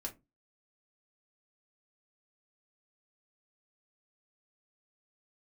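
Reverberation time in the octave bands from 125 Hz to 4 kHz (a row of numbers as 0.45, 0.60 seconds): 0.35, 0.35, 0.25, 0.20, 0.15, 0.15 seconds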